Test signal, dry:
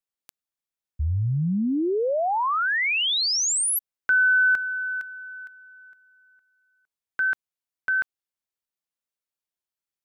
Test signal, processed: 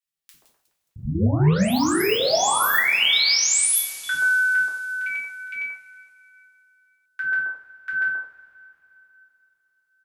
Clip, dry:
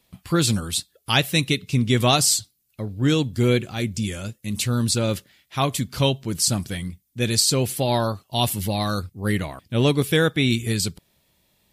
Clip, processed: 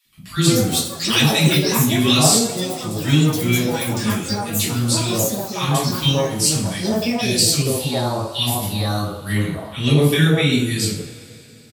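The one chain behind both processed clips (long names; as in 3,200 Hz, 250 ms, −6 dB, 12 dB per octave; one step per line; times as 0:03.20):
three-band delay without the direct sound highs, lows, mids 50/130 ms, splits 320/1,200 Hz
coupled-rooms reverb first 0.48 s, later 3.4 s, from −21 dB, DRR −5 dB
delay with pitch and tempo change per echo 262 ms, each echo +7 semitones, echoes 3, each echo −6 dB
level −2.5 dB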